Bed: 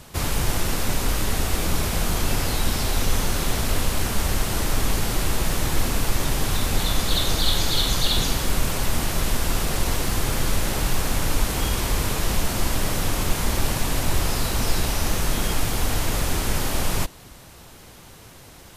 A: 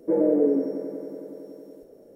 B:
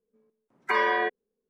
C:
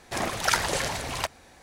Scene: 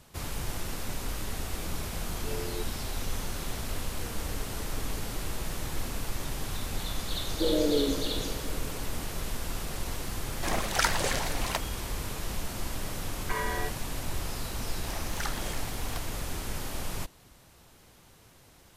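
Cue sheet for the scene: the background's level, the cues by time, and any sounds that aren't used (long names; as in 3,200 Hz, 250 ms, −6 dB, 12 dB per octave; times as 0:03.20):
bed −11.5 dB
0:01.54: mix in B −5 dB + inverse Chebyshev low-pass filter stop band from 1,900 Hz, stop band 70 dB
0:03.90: mix in A −13 dB + downward compressor, threshold −33 dBFS
0:07.32: mix in A −6 dB
0:10.31: mix in C −2.5 dB
0:12.60: mix in B −9.5 dB
0:14.73: mix in C −13 dB + wow of a warped record 78 rpm, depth 250 cents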